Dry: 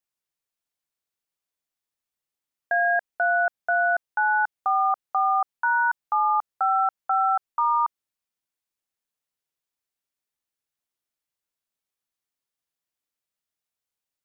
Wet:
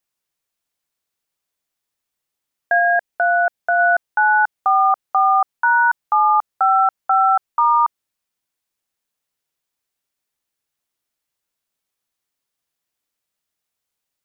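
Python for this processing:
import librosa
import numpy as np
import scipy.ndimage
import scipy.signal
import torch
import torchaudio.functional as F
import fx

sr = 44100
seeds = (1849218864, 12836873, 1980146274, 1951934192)

y = fx.dynamic_eq(x, sr, hz=1200.0, q=2.1, threshold_db=-36.0, ratio=4.0, max_db=-5, at=(2.78, 3.78), fade=0.02)
y = F.gain(torch.from_numpy(y), 7.0).numpy()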